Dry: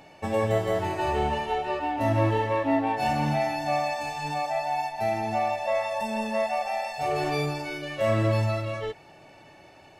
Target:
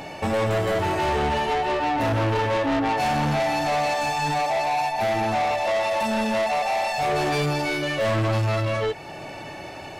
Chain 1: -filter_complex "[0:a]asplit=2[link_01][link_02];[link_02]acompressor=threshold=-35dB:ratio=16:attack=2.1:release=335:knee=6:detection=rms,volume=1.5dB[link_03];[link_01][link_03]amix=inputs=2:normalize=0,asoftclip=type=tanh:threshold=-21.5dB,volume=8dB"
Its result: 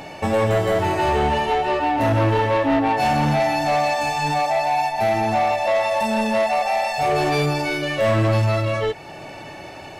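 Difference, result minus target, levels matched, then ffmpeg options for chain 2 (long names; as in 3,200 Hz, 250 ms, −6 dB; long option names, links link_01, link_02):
soft clipping: distortion −5 dB
-filter_complex "[0:a]asplit=2[link_01][link_02];[link_02]acompressor=threshold=-35dB:ratio=16:attack=2.1:release=335:knee=6:detection=rms,volume=1.5dB[link_03];[link_01][link_03]amix=inputs=2:normalize=0,asoftclip=type=tanh:threshold=-28dB,volume=8dB"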